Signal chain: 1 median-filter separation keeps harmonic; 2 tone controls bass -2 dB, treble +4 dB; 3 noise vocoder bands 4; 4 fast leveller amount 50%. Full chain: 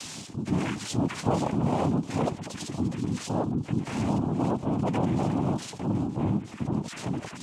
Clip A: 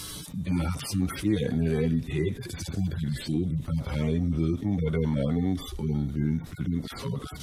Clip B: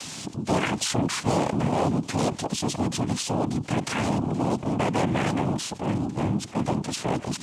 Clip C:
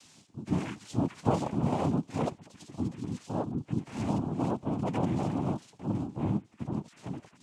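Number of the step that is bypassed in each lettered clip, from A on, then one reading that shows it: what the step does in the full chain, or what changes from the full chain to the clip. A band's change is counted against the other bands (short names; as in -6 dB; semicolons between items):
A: 3, 1 kHz band -11.0 dB; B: 1, 125 Hz band -5.5 dB; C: 4, crest factor change +4.0 dB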